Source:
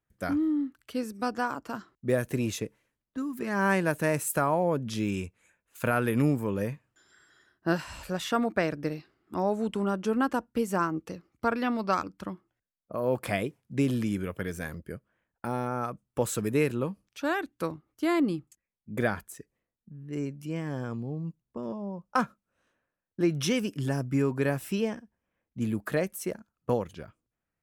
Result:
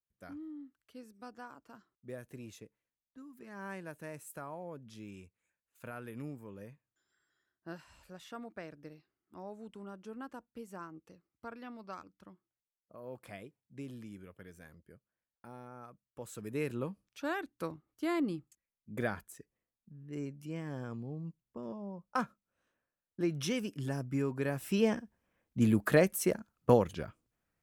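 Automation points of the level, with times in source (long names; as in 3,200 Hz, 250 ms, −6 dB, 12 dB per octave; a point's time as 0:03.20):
0:16.19 −18.5 dB
0:16.76 −7 dB
0:24.51 −7 dB
0:24.93 +3 dB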